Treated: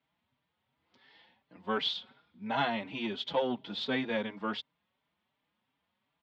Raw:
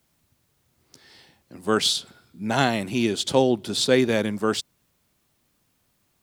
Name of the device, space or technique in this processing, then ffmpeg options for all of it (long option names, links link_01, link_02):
barber-pole flanger into a guitar amplifier: -filter_complex "[0:a]asplit=2[link_01][link_02];[link_02]adelay=4.7,afreqshift=2.8[link_03];[link_01][link_03]amix=inputs=2:normalize=1,asoftclip=type=tanh:threshold=-13.5dB,highpass=110,equalizer=frequency=110:width_type=q:width=4:gain=-9,equalizer=frequency=160:width_type=q:width=4:gain=-3,equalizer=frequency=360:width_type=q:width=4:gain=-8,equalizer=frequency=930:width_type=q:width=4:gain=7,equalizer=frequency=2000:width_type=q:width=4:gain=3,equalizer=frequency=3300:width_type=q:width=4:gain=5,lowpass=frequency=3500:width=0.5412,lowpass=frequency=3500:width=1.3066,volume=-6dB"